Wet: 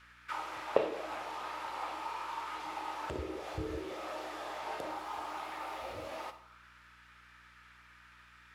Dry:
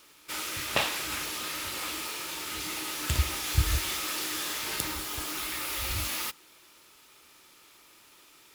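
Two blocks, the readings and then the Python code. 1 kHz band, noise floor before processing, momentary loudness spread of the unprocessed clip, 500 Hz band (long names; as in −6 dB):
+0.5 dB, −57 dBFS, 6 LU, +4.5 dB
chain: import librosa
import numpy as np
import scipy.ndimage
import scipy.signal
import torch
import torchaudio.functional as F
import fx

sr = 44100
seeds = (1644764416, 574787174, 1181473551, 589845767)

y = fx.auto_wah(x, sr, base_hz=420.0, top_hz=1700.0, q=4.0, full_db=-25.5, direction='down')
y = fx.add_hum(y, sr, base_hz=60, snr_db=25)
y = fx.rev_schroeder(y, sr, rt60_s=0.57, comb_ms=28, drr_db=10.0)
y = y * librosa.db_to_amplitude(9.0)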